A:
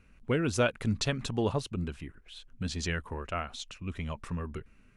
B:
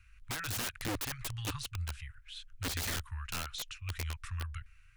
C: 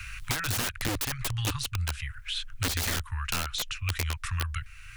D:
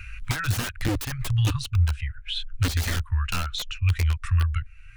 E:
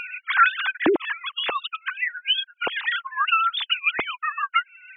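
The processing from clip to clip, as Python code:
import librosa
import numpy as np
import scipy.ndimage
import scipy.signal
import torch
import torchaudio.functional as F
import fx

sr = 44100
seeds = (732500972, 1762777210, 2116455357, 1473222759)

y1 = scipy.signal.sosfilt(scipy.signal.cheby2(4, 50, [210.0, 660.0], 'bandstop', fs=sr, output='sos'), x)
y1 = (np.mod(10.0 ** (32.0 / 20.0) * y1 + 1.0, 2.0) - 1.0) / 10.0 ** (32.0 / 20.0)
y1 = F.gain(torch.from_numpy(y1), 1.5).numpy()
y2 = fx.band_squash(y1, sr, depth_pct=70)
y2 = F.gain(torch.from_numpy(y2), 7.0).numpy()
y3 = fx.spectral_expand(y2, sr, expansion=1.5)
y4 = fx.sine_speech(y3, sr)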